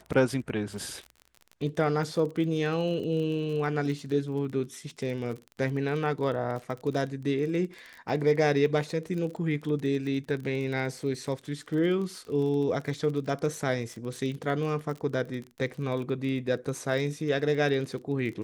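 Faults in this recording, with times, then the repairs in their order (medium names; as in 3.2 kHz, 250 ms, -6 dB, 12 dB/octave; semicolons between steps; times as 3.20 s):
crackle 31 per s -35 dBFS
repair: de-click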